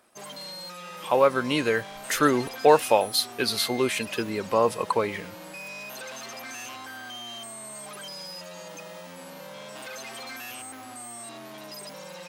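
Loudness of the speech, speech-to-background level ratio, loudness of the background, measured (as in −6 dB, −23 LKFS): −24.0 LKFS, 14.5 dB, −38.5 LKFS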